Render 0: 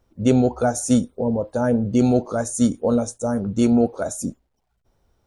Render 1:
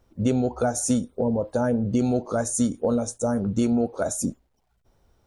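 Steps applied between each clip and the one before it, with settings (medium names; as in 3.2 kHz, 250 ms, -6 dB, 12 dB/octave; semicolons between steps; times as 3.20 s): compression 3:1, threshold -23 dBFS, peak gain reduction 9 dB; trim +2 dB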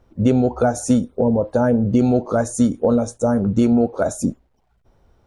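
treble shelf 4.3 kHz -11.5 dB; trim +6.5 dB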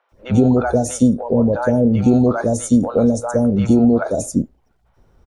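three bands offset in time mids, highs, lows 90/120 ms, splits 680/3600 Hz; trim +3 dB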